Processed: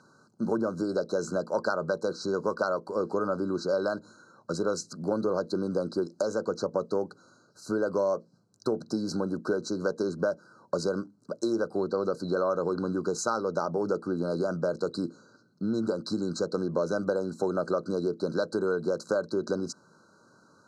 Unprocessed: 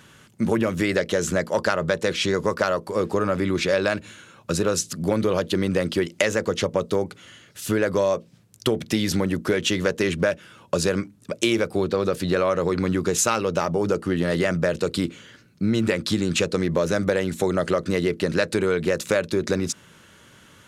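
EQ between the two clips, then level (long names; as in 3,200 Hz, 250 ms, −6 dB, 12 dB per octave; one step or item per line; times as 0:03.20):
high-pass filter 190 Hz 12 dB per octave
linear-phase brick-wall band-stop 1,600–3,900 Hz
high-frequency loss of the air 100 metres
−5.0 dB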